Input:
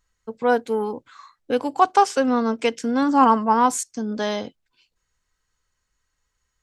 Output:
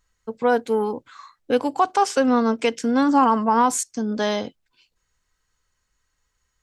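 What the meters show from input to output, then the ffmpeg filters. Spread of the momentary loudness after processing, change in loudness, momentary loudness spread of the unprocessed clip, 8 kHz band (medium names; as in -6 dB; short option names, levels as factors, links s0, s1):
10 LU, 0.0 dB, 13 LU, +2.0 dB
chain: -af "alimiter=limit=0.299:level=0:latency=1:release=65,volume=1.26"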